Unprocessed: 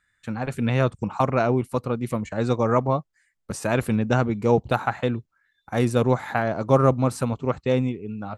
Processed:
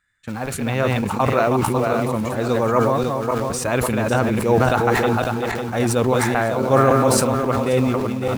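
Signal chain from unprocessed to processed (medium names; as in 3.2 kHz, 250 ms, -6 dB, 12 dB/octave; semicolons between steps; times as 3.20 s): backward echo that repeats 276 ms, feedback 52%, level -4 dB; dynamic bell 150 Hz, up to -5 dB, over -34 dBFS, Q 0.89; in parallel at -8 dB: bit crusher 6-bit; on the sum: decay stretcher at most 21 dB/s; trim -1 dB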